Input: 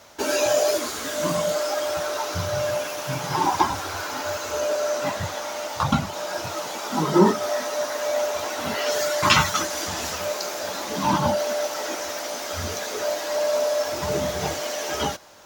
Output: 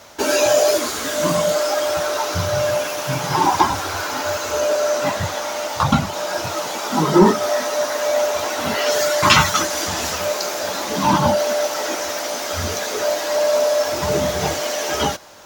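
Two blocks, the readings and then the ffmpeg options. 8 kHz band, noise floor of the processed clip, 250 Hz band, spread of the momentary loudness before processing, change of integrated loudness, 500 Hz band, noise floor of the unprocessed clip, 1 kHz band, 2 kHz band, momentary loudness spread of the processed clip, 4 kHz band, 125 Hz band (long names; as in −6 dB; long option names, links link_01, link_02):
+5.5 dB, −27 dBFS, +5.0 dB, 9 LU, +5.5 dB, +5.5 dB, −32 dBFS, +5.0 dB, +5.0 dB, 8 LU, +5.5 dB, +5.0 dB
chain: -af "acontrast=41"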